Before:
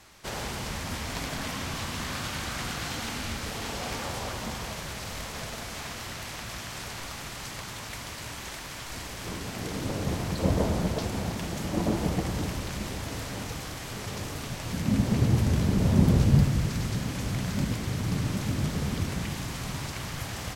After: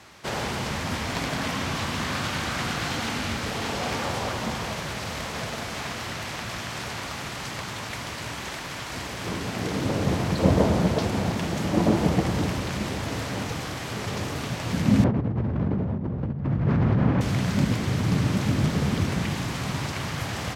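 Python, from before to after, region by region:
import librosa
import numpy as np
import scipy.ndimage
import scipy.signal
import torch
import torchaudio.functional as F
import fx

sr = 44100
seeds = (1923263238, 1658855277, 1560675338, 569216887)

y = fx.chain(x, sr, fx.lowpass(hz=1300.0, slope=12),
    fx.over_compress(threshold_db=-30.0, ratio=-1.0), at=(15.04, 17.21))
y = scipy.signal.sosfilt(scipy.signal.butter(2, 83.0, 'highpass', fs=sr, output='sos'), y)
y = fx.high_shelf(y, sr, hz=6500.0, db=-10.0)
y = y * 10.0 ** (6.5 / 20.0)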